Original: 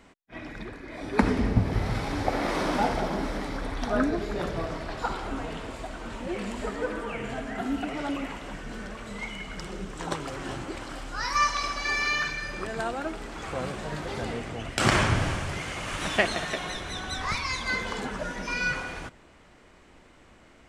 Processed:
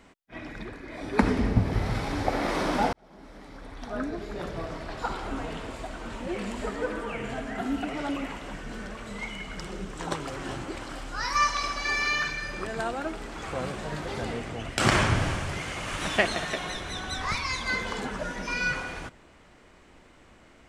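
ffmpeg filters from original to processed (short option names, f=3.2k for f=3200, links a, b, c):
-filter_complex "[0:a]asplit=2[a][b];[a]atrim=end=2.93,asetpts=PTS-STARTPTS,afade=t=out:st=2.926:d=0.004:c=hsin[c];[b]atrim=start=2.93,asetpts=PTS-STARTPTS,afade=t=in:d=2.46[d];[c][d]concat=n=2:v=0:a=1"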